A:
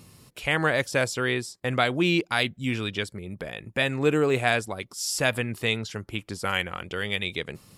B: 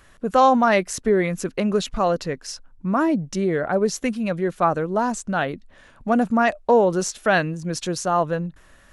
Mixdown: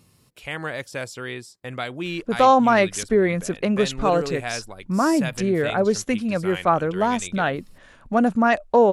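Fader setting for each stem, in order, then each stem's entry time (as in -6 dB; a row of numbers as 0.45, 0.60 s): -6.5, +0.5 dB; 0.00, 2.05 s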